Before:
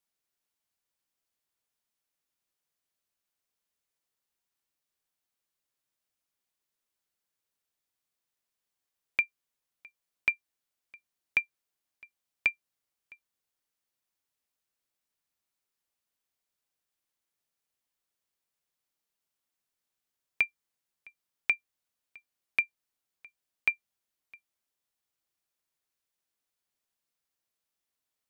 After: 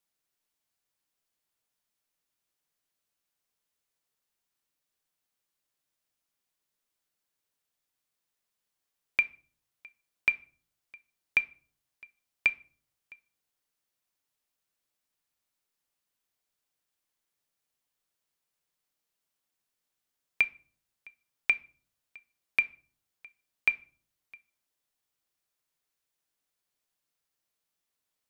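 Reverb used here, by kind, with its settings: shoebox room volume 400 m³, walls furnished, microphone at 0.43 m; gain +1.5 dB

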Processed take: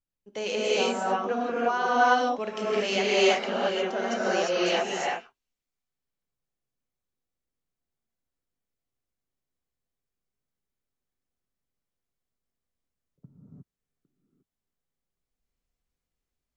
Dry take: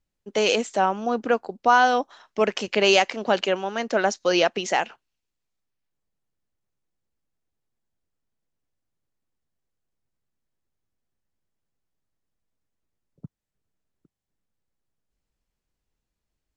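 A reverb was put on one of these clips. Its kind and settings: non-linear reverb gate 0.38 s rising, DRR -8 dB; gain -12 dB

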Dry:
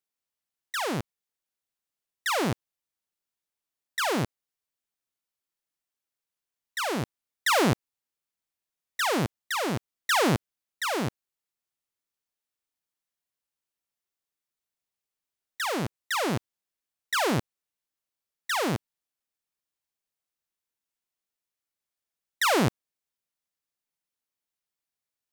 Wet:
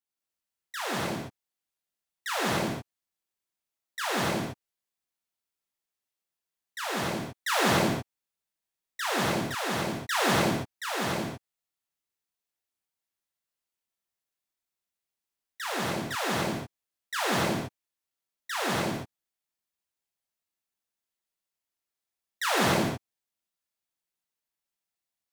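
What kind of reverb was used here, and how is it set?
non-linear reverb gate 0.3 s flat, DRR -6.5 dB; gain -7.5 dB

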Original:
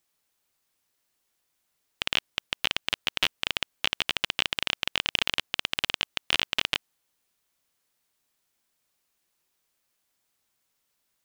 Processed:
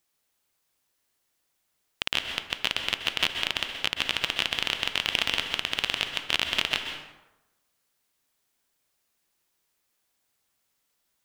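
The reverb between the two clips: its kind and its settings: plate-style reverb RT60 1 s, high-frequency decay 0.6×, pre-delay 0.115 s, DRR 5 dB

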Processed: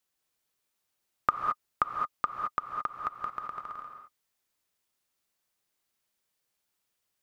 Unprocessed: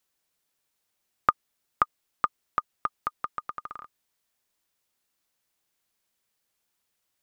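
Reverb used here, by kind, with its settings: non-linear reverb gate 0.24 s rising, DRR 3 dB; gain -4 dB

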